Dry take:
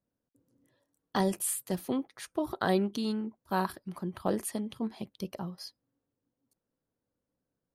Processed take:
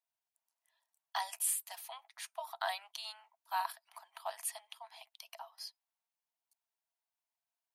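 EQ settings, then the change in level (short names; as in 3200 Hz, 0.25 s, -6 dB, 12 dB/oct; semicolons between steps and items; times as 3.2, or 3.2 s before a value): rippled Chebyshev high-pass 650 Hz, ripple 6 dB; high shelf 5300 Hz +7 dB; -1.0 dB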